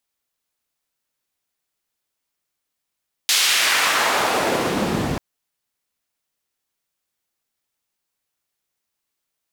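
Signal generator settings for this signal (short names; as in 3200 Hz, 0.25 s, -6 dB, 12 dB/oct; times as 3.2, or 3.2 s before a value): swept filtered noise white, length 1.89 s bandpass, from 4100 Hz, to 130 Hz, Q 0.99, exponential, gain ramp +8 dB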